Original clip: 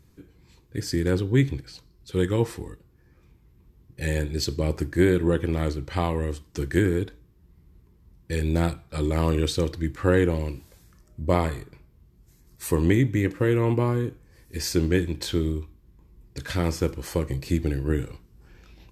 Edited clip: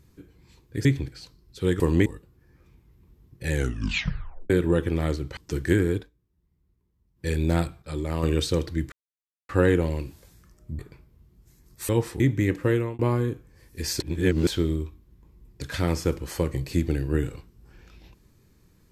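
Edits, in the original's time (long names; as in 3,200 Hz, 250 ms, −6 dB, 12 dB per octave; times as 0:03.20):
0:00.85–0:01.37: remove
0:02.32–0:02.63: swap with 0:12.70–0:12.96
0:04.08: tape stop 0.99 s
0:05.94–0:06.43: remove
0:07.04–0:08.33: duck −15 dB, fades 0.12 s
0:08.88–0:09.29: clip gain −5 dB
0:09.98: splice in silence 0.57 s
0:11.28–0:11.60: remove
0:13.47–0:13.75: fade out
0:14.76–0:15.23: reverse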